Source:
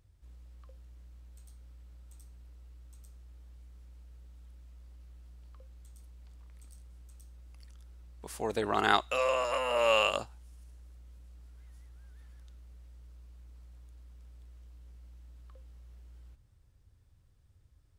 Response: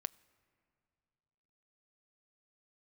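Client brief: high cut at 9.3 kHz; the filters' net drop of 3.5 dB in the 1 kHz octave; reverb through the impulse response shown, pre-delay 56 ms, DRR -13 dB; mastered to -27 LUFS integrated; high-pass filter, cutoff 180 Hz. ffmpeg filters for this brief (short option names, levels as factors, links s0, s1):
-filter_complex "[0:a]highpass=180,lowpass=9300,equalizer=f=1000:t=o:g=-4.5,asplit=2[s0][s1];[1:a]atrim=start_sample=2205,adelay=56[s2];[s1][s2]afir=irnorm=-1:irlink=0,volume=5.62[s3];[s0][s3]amix=inputs=2:normalize=0,volume=0.335"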